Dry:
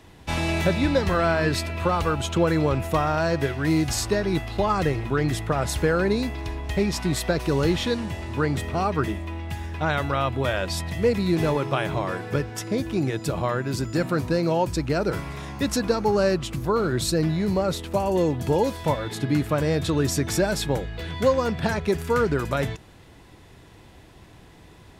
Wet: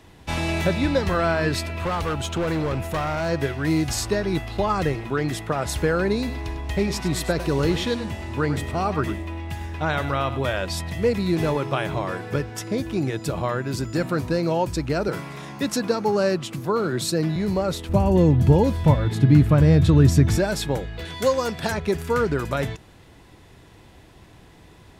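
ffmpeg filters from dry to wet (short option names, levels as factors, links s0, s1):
-filter_complex "[0:a]asettb=1/sr,asplit=3[s0][s1][s2];[s0]atrim=end=1.734[s3];[s1]atrim=start=1.73:end=3.29,asetpts=PTS-STARTPTS,afade=t=in:d=0.004:c=qsin,afade=t=out:st=1.556:d=0.004:c=qsin,asoftclip=type=hard:threshold=0.0891[s4];[s2]atrim=start=3.286[s5];[s3][s4]acrossfade=d=0.004:c1=hsin:c2=qsin[s6];[s6][s5]acrossfade=d=0.004:c1=qsin:c2=hsin,asettb=1/sr,asplit=3[s7][s8][s9];[s7]atrim=end=4.954[s10];[s8]atrim=start=4.95:end=5.66,asetpts=PTS-STARTPTS,afade=t=in:d=0.004:c=qsin,afade=t=out:st=0.706:d=0.004:c=qsin,equalizer=f=72:w=1.7:g=-14.5[s11];[s9]atrim=start=5.656[s12];[s10][s11]acrossfade=d=0.004:c1=hsin:c2=qsin[s13];[s13][s12]acrossfade=d=0.004:c1=qsin:c2=hsin,asettb=1/sr,asplit=3[s14][s15][s16];[s14]atrim=end=6.174[s17];[s15]atrim=start=6.17:end=10.41,asetpts=PTS-STARTPTS,afade=t=in:d=0.004:c=qsin,afade=t=out:st=4.236:d=0.004:c=qsin,aecho=1:1:100:0.251,atrim=end_sample=186984[s18];[s16]atrim=start=10.406[s19];[s17][s18]acrossfade=d=0.004:c1=hsin:c2=qsin[s20];[s20][s19]acrossfade=d=0.004:c1=qsin:c2=hsin,asettb=1/sr,asplit=3[s21][s22][s23];[s21]atrim=end=15.084[s24];[s22]atrim=start=15.08:end=17.36,asetpts=PTS-STARTPTS,afade=t=in:d=0.004:c=qsin,afade=t=out:st=2.276:d=0.004:c=qsin,highpass=f=120:w=0.5412,highpass=f=120:w=1.3066[s25];[s23]atrim=start=17.356[s26];[s24][s25]acrossfade=d=0.004:c1=hsin:c2=qsin[s27];[s27][s26]acrossfade=d=0.004:c1=qsin:c2=hsin,asettb=1/sr,asplit=3[s28][s29][s30];[s28]atrim=end=17.894[s31];[s29]atrim=start=17.89:end=20.38,asetpts=PTS-STARTPTS,afade=t=in:d=0.004:c=qsin,afade=t=out:st=2.486:d=0.004:c=qsin,bass=f=250:g=13,treble=f=4000:g=-4[s32];[s30]atrim=start=20.376[s33];[s31][s32]acrossfade=d=0.004:c1=hsin:c2=qsin[s34];[s34][s33]acrossfade=d=0.004:c1=qsin:c2=hsin,asettb=1/sr,asplit=3[s35][s36][s37];[s35]atrim=end=21.054[s38];[s36]atrim=start=21.05:end=21.72,asetpts=PTS-STARTPTS,afade=t=in:d=0.004:c=qsin,afade=t=out:st=0.666:d=0.004:c=qsin,bass=f=250:g=-6,treble=f=4000:g=8[s39];[s37]atrim=start=21.716[s40];[s38][s39]acrossfade=d=0.004:c1=hsin:c2=qsin[s41];[s41][s40]acrossfade=d=0.004:c1=qsin:c2=hsin"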